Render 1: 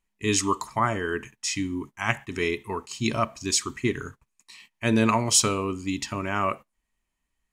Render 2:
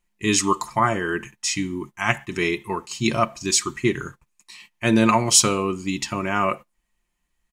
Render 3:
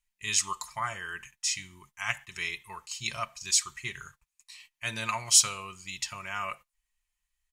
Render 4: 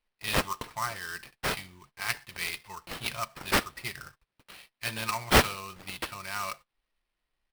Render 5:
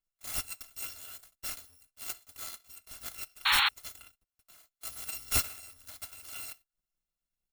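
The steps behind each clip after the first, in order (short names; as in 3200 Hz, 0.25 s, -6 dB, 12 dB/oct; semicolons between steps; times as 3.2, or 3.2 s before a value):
comb 5.7 ms, depth 46%; gain +3.5 dB
passive tone stack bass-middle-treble 10-0-10; gain -3.5 dB
sample-rate reducer 6900 Hz, jitter 20%
FFT order left unsorted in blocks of 256 samples; painted sound noise, 3.45–3.69, 780–4400 Hz -17 dBFS; gain -8 dB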